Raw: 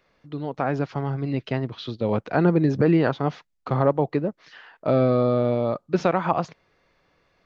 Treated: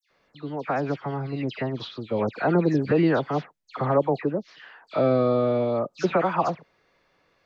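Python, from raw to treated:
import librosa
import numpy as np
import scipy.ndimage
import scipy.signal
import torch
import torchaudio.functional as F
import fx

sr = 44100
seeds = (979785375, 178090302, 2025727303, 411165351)

y = fx.low_shelf(x, sr, hz=150.0, db=-8.0)
y = fx.dispersion(y, sr, late='lows', ms=105.0, hz=2400.0)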